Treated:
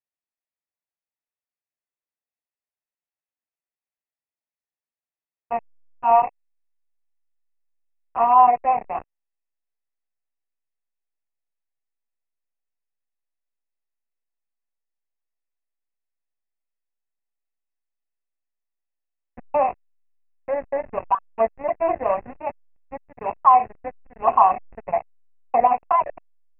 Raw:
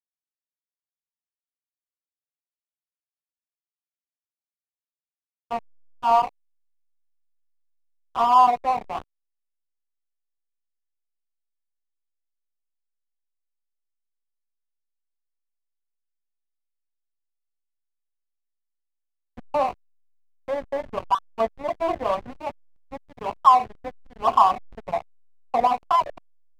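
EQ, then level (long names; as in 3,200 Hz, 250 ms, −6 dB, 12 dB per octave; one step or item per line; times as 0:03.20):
Chebyshev low-pass with heavy ripple 2,700 Hz, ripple 6 dB
+4.0 dB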